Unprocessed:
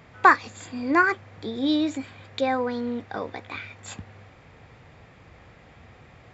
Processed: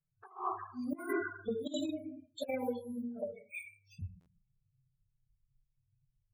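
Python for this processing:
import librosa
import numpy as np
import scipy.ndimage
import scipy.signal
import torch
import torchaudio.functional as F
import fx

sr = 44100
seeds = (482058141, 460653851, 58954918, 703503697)

y = fx.bin_expand(x, sr, power=3.0)
y = np.repeat(scipy.signal.resample_poly(y, 1, 4), 4)[:len(y)]
y = fx.high_shelf(y, sr, hz=3800.0, db=-7.5)
y = fx.hum_notches(y, sr, base_hz=60, count=6)
y = fx.rev_plate(y, sr, seeds[0], rt60_s=0.6, hf_ratio=0.4, predelay_ms=0, drr_db=-5.0)
y = fx.env_flanger(y, sr, rest_ms=6.8, full_db=-18.0)
y = fx.low_shelf(y, sr, hz=490.0, db=-3.5)
y = fx.spec_topn(y, sr, count=32)
y = fx.over_compress(y, sr, threshold_db=-32.0, ratio=-0.5)
y = fx.buffer_glitch(y, sr, at_s=(4.2,), block=512, repeats=4)
y = F.gain(torch.from_numpy(y), -4.0).numpy()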